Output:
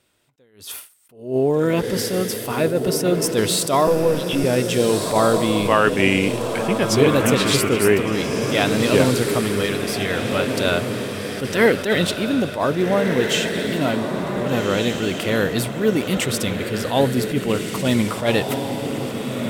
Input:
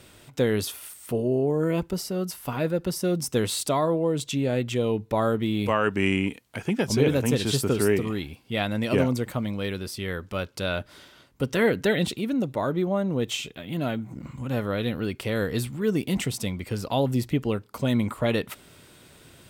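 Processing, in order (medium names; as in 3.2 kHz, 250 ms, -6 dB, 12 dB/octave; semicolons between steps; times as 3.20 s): 3.87–4.44 s: LPC vocoder at 8 kHz pitch kept; bass shelf 230 Hz -7 dB; on a send: echo that smears into a reverb 1575 ms, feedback 41%, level -5 dB; on the sum: gate with hold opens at -27 dBFS; attacks held to a fixed rise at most 140 dB/s; trim +8 dB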